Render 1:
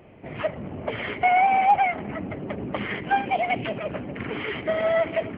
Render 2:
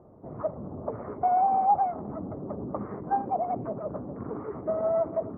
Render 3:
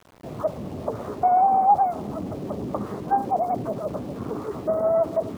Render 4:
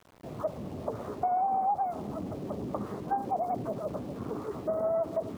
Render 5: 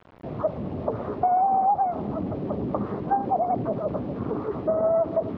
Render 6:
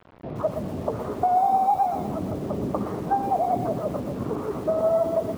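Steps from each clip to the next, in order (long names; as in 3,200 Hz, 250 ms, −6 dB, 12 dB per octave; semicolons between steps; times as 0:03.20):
elliptic low-pass filter 1,200 Hz, stop band 70 dB; level −3 dB
centre clipping without the shift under −48 dBFS; level +5 dB
downward compressor 5 to 1, threshold −20 dBFS, peak gain reduction 7 dB; level −5.5 dB
high-frequency loss of the air 330 metres; level +8 dB
feedback echo at a low word length 121 ms, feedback 35%, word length 7 bits, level −8.5 dB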